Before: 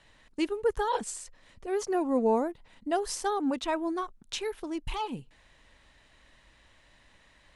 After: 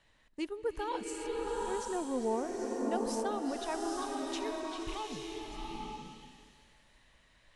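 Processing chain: delay with a stepping band-pass 0.395 s, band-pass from 3700 Hz, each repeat 0.7 oct, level -6 dB; bloom reverb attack 0.87 s, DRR -0.5 dB; gain -8 dB

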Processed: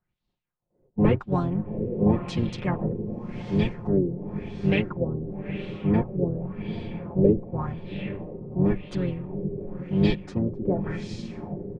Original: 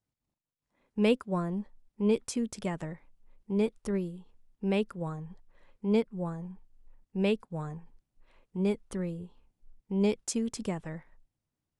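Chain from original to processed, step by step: octaver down 1 oct, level +2 dB; comb 5.6 ms, depth 79%; diffused feedback echo 0.819 s, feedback 49%, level -9 dB; harmoniser -5 st -6 dB, -4 st -8 dB; LFO low-pass sine 0.92 Hz 420–4100 Hz

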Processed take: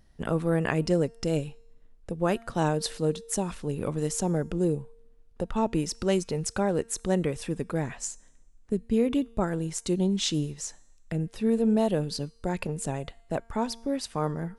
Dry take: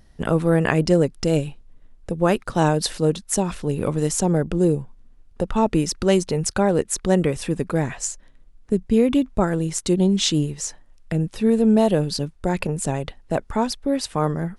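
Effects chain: resonator 230 Hz, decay 0.94 s, mix 40%; gain -3 dB

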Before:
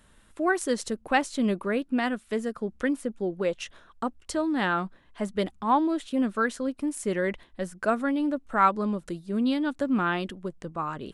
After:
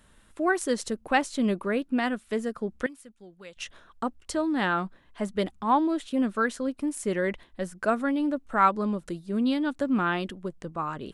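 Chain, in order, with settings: 2.86–3.57 passive tone stack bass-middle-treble 5-5-5

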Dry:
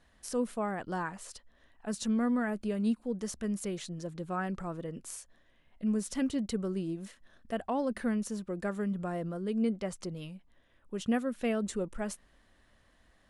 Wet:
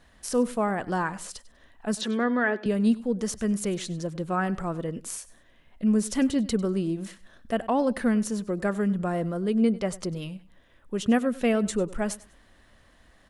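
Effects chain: 2.01–2.66 speaker cabinet 320–5000 Hz, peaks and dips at 380 Hz +9 dB, 1700 Hz +7 dB, 3400 Hz +8 dB; feedback echo 98 ms, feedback 24%, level -19 dB; gain +7.5 dB

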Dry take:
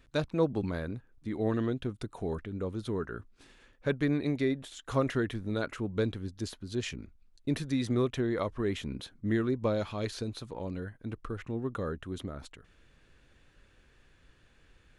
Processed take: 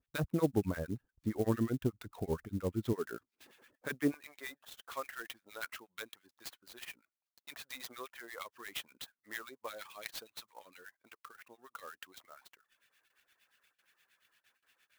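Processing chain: gate with hold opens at -52 dBFS; HPF 46 Hz 12 dB/oct, from 2.93 s 240 Hz, from 4.14 s 1300 Hz; treble ducked by the level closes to 2200 Hz, closed at -32.5 dBFS; reverb removal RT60 0.52 s; harmonic tremolo 8.6 Hz, depth 100%, crossover 1300 Hz; clock jitter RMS 0.031 ms; gain +3.5 dB

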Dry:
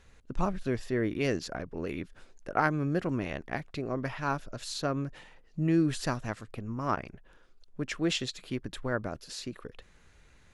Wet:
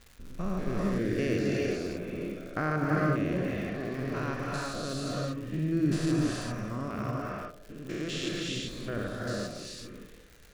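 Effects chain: stepped spectrum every 0.2 s; bell 880 Hz -13.5 dB 0.25 oct; narrowing echo 77 ms, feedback 78%, band-pass 410 Hz, level -12 dB; non-linear reverb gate 0.42 s rising, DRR -2.5 dB; crackle 220/s -42 dBFS

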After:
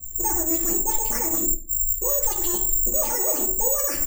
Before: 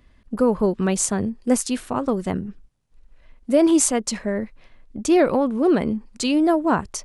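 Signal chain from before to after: spectral delay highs late, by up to 0.327 s; comb 6.1 ms, depth 99%; speed mistake 45 rpm record played at 78 rpm; tone controls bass +12 dB, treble -4 dB; careless resampling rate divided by 6×, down filtered, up zero stuff; limiter -9.5 dBFS, peak gain reduction 22.5 dB; on a send at -2 dB: reverb RT60 0.50 s, pre-delay 8 ms; on the sum: upward expander 1.5:1, over -30 dBFS

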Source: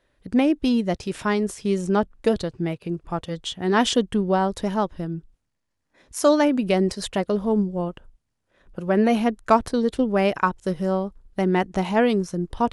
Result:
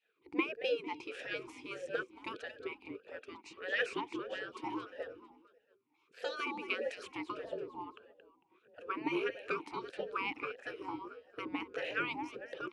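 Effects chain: frequency-shifting echo 0.225 s, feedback 45%, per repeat -34 Hz, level -14.5 dB; spectral gate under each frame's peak -15 dB weak; vowel sweep e-u 1.6 Hz; gain +8.5 dB

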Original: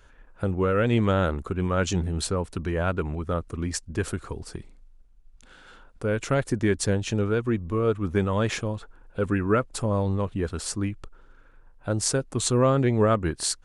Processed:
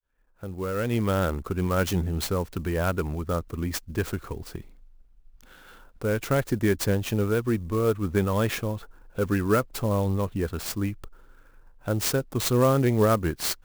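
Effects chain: opening faded in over 1.44 s; clock jitter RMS 0.027 ms

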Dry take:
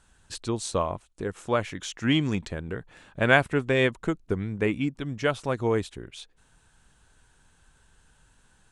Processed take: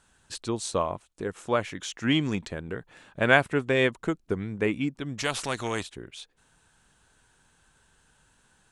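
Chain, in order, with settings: low shelf 80 Hz -10.5 dB; 5.18–5.83 spectral compressor 2:1

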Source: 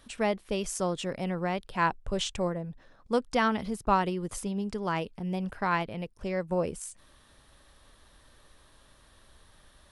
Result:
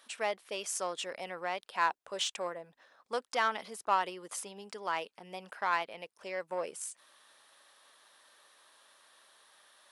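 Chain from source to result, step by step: in parallel at -3 dB: soft clip -25.5 dBFS, distortion -10 dB; on the sum: HPF 670 Hz 12 dB/oct; gain -4.5 dB

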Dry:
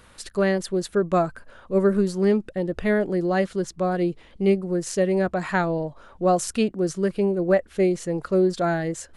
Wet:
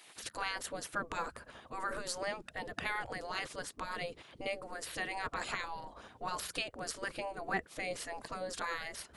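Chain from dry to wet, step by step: limiter -15.5 dBFS, peak gain reduction 7 dB; spectral gate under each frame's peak -15 dB weak; gain +1 dB

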